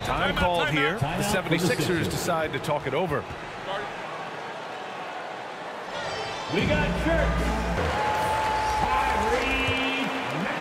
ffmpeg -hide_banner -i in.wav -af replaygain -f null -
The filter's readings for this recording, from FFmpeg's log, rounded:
track_gain = +7.3 dB
track_peak = 0.242